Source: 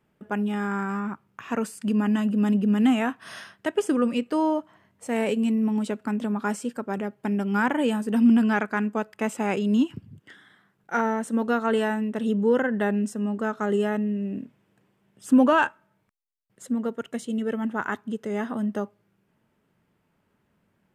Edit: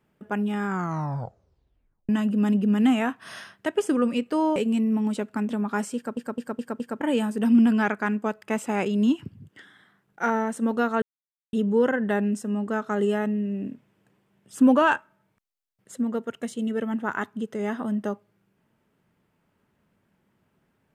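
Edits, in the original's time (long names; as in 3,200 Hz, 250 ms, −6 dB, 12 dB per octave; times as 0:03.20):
0:00.67: tape stop 1.42 s
0:04.56–0:05.27: remove
0:06.67: stutter in place 0.21 s, 5 plays
0:11.73–0:12.24: silence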